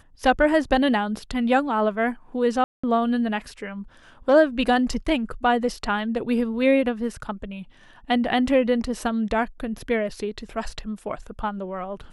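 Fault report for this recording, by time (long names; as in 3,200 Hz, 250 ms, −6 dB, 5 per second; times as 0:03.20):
0:02.64–0:02.83: drop-out 195 ms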